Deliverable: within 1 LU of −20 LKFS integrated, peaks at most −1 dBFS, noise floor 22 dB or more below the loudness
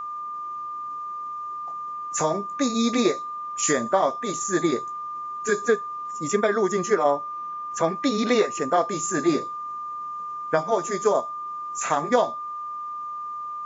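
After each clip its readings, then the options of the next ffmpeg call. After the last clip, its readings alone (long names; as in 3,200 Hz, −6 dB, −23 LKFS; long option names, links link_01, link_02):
interfering tone 1,200 Hz; level of the tone −30 dBFS; integrated loudness −25.5 LKFS; sample peak −6.0 dBFS; target loudness −20.0 LKFS
→ -af "bandreject=frequency=1200:width=30"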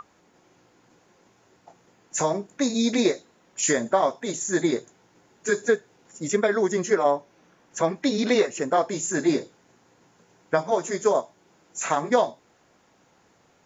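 interfering tone none found; integrated loudness −24.5 LKFS; sample peak −6.5 dBFS; target loudness −20.0 LKFS
→ -af "volume=4.5dB"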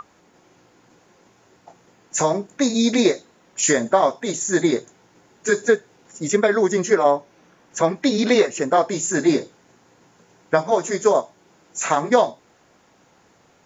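integrated loudness −20.0 LKFS; sample peak −2.0 dBFS; background noise floor −57 dBFS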